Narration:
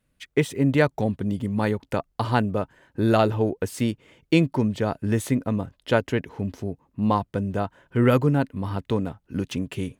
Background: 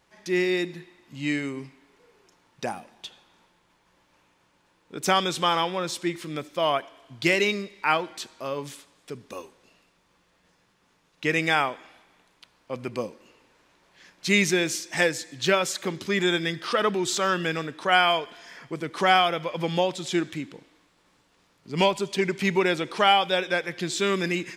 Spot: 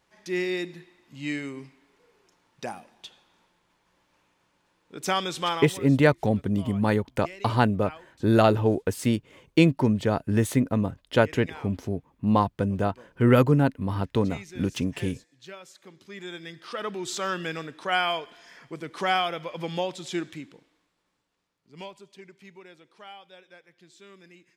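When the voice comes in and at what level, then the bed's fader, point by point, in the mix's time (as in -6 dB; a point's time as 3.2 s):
5.25 s, +0.5 dB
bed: 5.51 s -4 dB
5.97 s -21.5 dB
15.73 s -21.5 dB
17.2 s -5 dB
20.25 s -5 dB
22.58 s -26 dB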